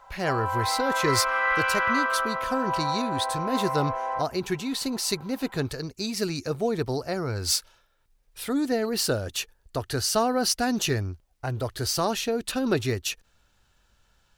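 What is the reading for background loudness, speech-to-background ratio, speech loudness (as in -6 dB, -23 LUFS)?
-27.0 LUFS, -1.0 dB, -28.0 LUFS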